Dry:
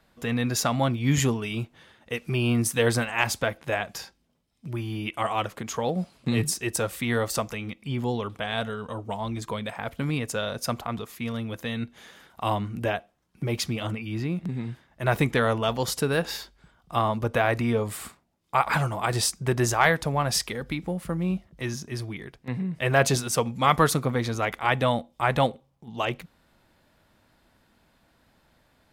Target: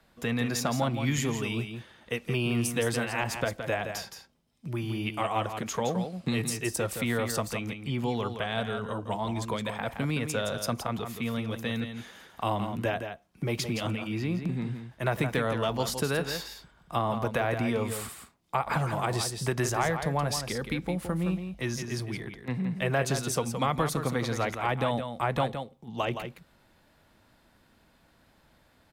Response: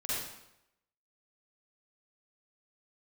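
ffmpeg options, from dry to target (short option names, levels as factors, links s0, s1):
-filter_complex "[0:a]acrossover=split=130|750[s0][s1][s2];[s0]acompressor=threshold=0.0112:ratio=4[s3];[s1]acompressor=threshold=0.0398:ratio=4[s4];[s2]acompressor=threshold=0.0282:ratio=4[s5];[s3][s4][s5]amix=inputs=3:normalize=0,aecho=1:1:168:0.398"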